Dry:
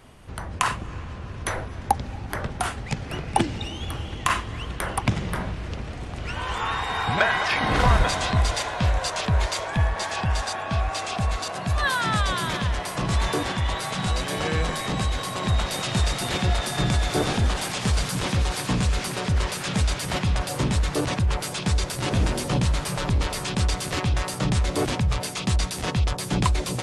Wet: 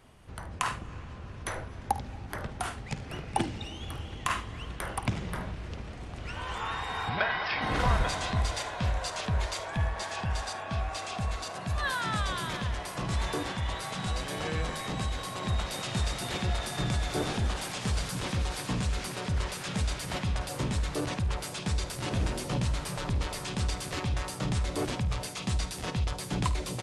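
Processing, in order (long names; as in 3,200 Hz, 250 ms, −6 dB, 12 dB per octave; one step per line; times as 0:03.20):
0:07.09–0:07.62: elliptic low-pass filter 5,200 Hz, stop band 40 dB
ambience of single reflections 51 ms −15.5 dB, 75 ms −17.5 dB
level −7.5 dB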